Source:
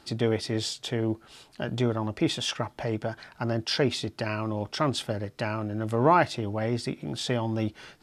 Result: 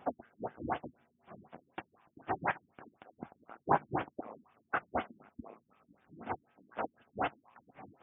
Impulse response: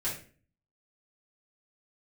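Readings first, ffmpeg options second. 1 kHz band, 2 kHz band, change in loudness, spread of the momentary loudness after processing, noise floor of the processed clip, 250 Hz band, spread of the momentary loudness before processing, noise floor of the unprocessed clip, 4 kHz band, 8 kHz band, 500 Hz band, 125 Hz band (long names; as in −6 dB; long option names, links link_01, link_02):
−6.0 dB, −7.5 dB, −10.0 dB, 22 LU, −78 dBFS, −16.0 dB, 9 LU, −58 dBFS, −26.5 dB, below −40 dB, −13.5 dB, −20.5 dB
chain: -filter_complex "[0:a]afftfilt=real='real(if(lt(b,736),b+184*(1-2*mod(floor(b/184),2)),b),0)':imag='imag(if(lt(b,736),b+184*(1-2*mod(floor(b/184),2)),b),0)':win_size=2048:overlap=0.75,highpass=120,equalizer=frequency=140:width_type=q:width=4:gain=4,equalizer=frequency=220:width_type=q:width=4:gain=4,equalizer=frequency=760:width_type=q:width=4:gain=6,equalizer=frequency=3600:width_type=q:width=4:gain=-5,lowpass=frequency=5700:width=0.5412,lowpass=frequency=5700:width=1.3066,asplit=2[link_01][link_02];[link_02]acompressor=threshold=-40dB:ratio=5,volume=-2dB[link_03];[link_01][link_03]amix=inputs=2:normalize=0,afftfilt=real='re*lt(b*sr/1024,320*pow(3700/320,0.5+0.5*sin(2*PI*4*pts/sr)))':imag='im*lt(b*sr/1024,320*pow(3700/320,0.5+0.5*sin(2*PI*4*pts/sr)))':win_size=1024:overlap=0.75,volume=2dB"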